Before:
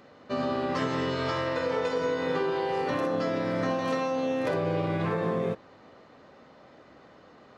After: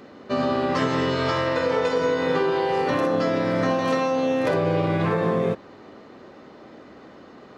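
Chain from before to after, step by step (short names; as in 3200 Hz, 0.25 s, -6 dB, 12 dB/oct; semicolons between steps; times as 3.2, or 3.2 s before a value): band noise 200–450 Hz -55 dBFS; gain +6 dB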